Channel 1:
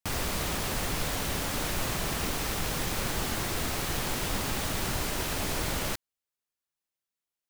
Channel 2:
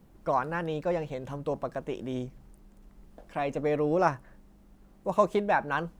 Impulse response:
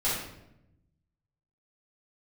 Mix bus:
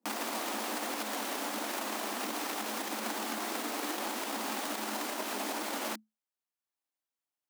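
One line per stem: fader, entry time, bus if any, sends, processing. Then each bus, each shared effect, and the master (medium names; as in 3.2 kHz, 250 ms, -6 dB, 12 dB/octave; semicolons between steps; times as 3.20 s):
+1.0 dB, 0.00 s, no send, none
-19.5 dB, 0.00 s, no send, tilt EQ -3 dB/octave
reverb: none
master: transient shaper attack +12 dB, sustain -2 dB; rippled Chebyshev high-pass 210 Hz, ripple 6 dB; peak limiter -25 dBFS, peak gain reduction 10.5 dB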